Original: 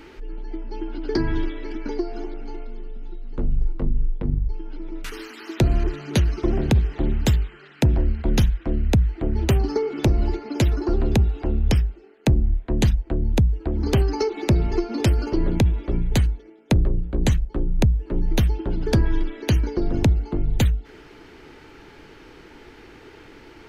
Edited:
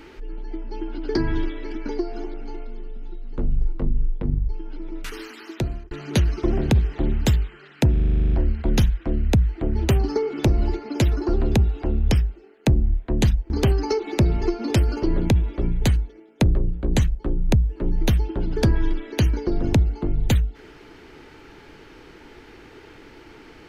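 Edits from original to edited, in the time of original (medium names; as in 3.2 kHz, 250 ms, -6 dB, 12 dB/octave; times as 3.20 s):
5.30–5.91 s: fade out
7.92 s: stutter 0.04 s, 11 plays
13.10–13.80 s: delete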